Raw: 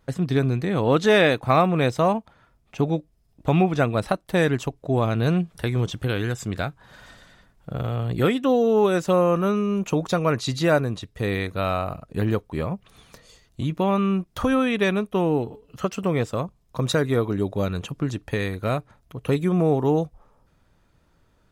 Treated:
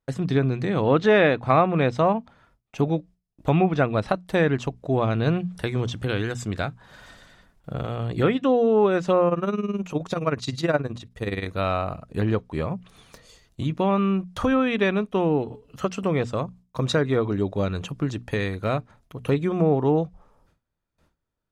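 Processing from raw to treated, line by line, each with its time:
9.28–11.46 tremolo 19 Hz, depth 80%
whole clip: gate with hold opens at -50 dBFS; notches 60/120/180/240 Hz; treble ducked by the level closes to 2600 Hz, closed at -15 dBFS

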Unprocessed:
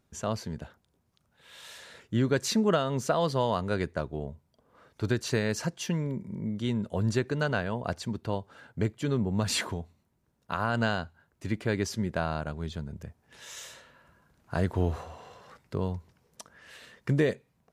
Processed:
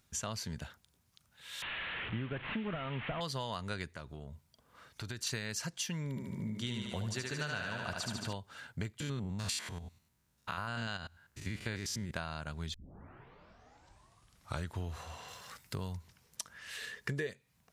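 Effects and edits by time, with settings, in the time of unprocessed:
1.62–3.21 delta modulation 16 kbps, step -35 dBFS
3.96–5.27 compressor 2.5:1, threshold -41 dBFS
6.09–8.33 thinning echo 74 ms, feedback 70%, high-pass 210 Hz, level -3 dB
9–12.11 stepped spectrum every 0.1 s
12.74 tape start 2.03 s
15.28–15.97 high shelf 7800 Hz +10 dB
16.77–17.27 small resonant body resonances 430/1700 Hz, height 13 dB
whole clip: passive tone stack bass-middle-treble 5-5-5; compressor, threshold -49 dBFS; gain +14 dB

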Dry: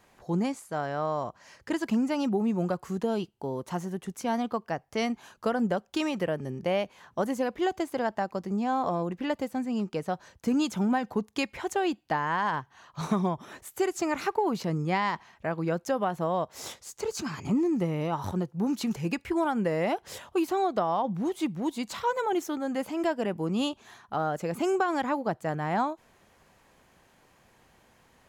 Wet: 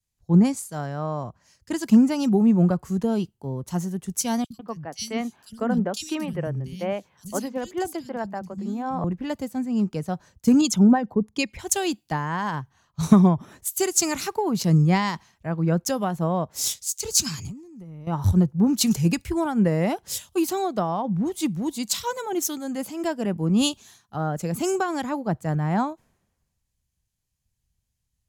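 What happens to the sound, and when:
4.44–9.04 three bands offset in time highs, lows, mids 60/150 ms, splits 210/3100 Hz
10.61–11.59 formant sharpening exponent 1.5
17.37–18.07 compressor 10:1, threshold -36 dBFS
whole clip: tone controls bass +12 dB, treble +12 dB; three-band expander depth 100%

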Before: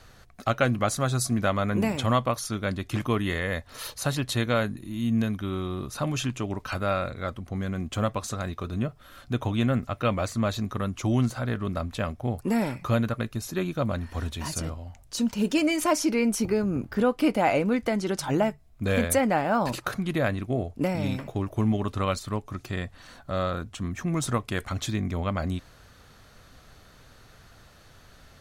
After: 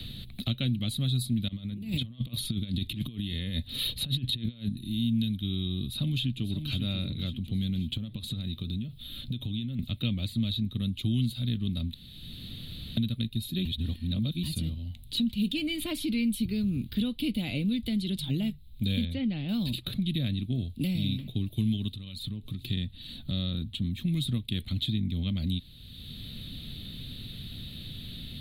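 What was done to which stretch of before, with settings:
1.48–4.69 negative-ratio compressor -32 dBFS, ratio -0.5
5.83–6.7 echo throw 0.54 s, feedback 35%, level -9.5 dB
7.97–9.79 compressor 16:1, threshold -33 dBFS
11.94–12.97 room tone
13.65–14.43 reverse
15.15–17.17 bell 1400 Hz +5.5 dB 1.5 oct
19.05–19.49 air absorption 250 m
21.88–22.69 compressor 12:1, threshold -37 dBFS
whole clip: EQ curve 230 Hz 0 dB, 410 Hz -16 dB, 890 Hz -30 dB, 1500 Hz -27 dB, 3800 Hz +10 dB, 5800 Hz -25 dB, 9900 Hz -5 dB, 15000 Hz +1 dB; three-band squash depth 70%

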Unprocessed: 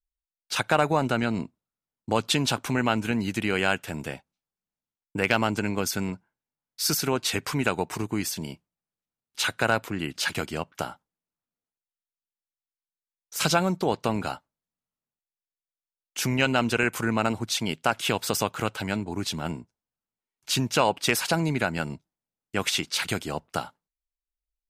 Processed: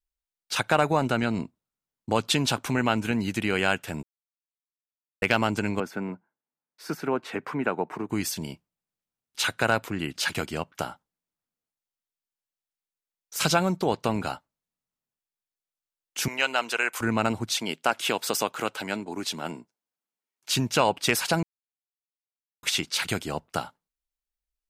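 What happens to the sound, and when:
4.03–5.22 mute
5.8–8.1 three-band isolator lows -23 dB, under 160 Hz, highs -21 dB, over 2100 Hz
16.28–17.01 HPF 620 Hz
17.58–20.53 HPF 250 Hz
21.43–22.63 mute

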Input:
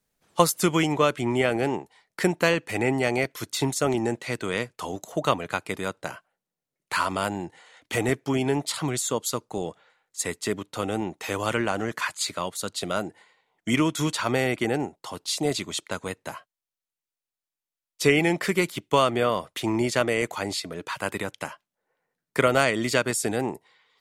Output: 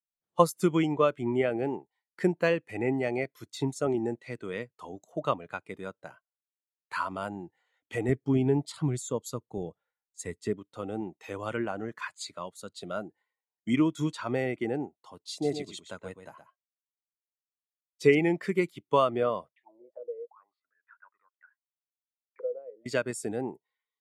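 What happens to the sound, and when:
8.09–10.53 low shelf 130 Hz +10 dB
15.3–18.15 echo 0.121 s -6 dB
19.55–22.86 auto-wah 490–2900 Hz, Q 13, down, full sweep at -20 dBFS
whole clip: spectral expander 1.5:1; gain -4 dB

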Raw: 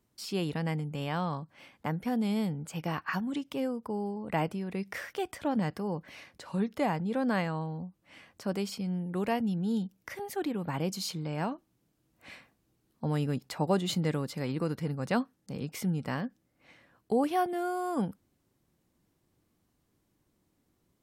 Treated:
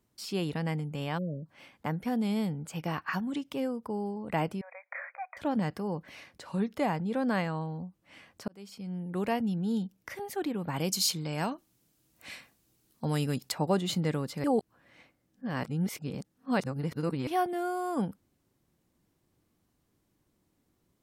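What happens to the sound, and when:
1.18–1.46 spectral delete 660–11000 Hz
4.61–5.37 brick-wall FIR band-pass 510–2500 Hz
8.48–9.19 fade in
10.76–13.52 high shelf 3000 Hz +11.5 dB
14.44–17.27 reverse

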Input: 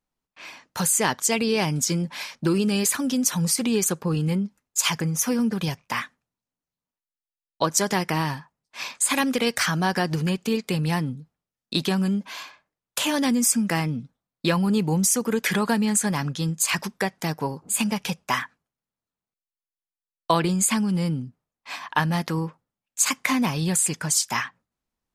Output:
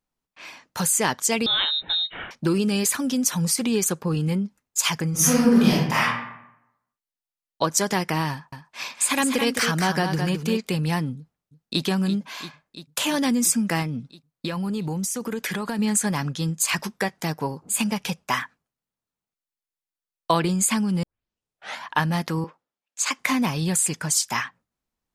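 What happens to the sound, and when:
1.46–2.31 inverted band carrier 3900 Hz
5.1–6.03 reverb throw, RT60 0.84 s, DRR -7.5 dB
8.31–10.67 echo 0.213 s -6.5 dB
11.17–11.84 echo throw 0.34 s, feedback 80%, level -12 dB
13.82–15.79 compressor, threshold -24 dBFS
16.78–17.24 doubler 14 ms -12 dB
18.35–20.32 short-mantissa float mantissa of 6-bit
21.03 tape start 0.84 s
22.44–23.19 three-band isolator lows -18 dB, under 270 Hz, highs -13 dB, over 7200 Hz

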